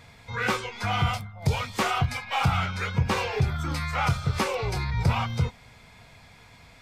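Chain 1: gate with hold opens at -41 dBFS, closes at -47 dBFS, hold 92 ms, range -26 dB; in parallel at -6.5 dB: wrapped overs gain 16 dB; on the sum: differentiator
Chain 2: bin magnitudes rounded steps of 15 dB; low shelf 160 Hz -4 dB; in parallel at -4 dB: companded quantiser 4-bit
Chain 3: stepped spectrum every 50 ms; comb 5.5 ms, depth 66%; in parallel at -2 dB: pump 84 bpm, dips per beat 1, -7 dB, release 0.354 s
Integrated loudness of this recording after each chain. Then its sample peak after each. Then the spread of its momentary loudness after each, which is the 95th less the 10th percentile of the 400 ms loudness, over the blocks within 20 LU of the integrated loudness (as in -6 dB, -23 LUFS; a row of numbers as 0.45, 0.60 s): -35.0, -24.5, -23.0 LUFS; -16.5, -9.0, -7.5 dBFS; 6, 4, 5 LU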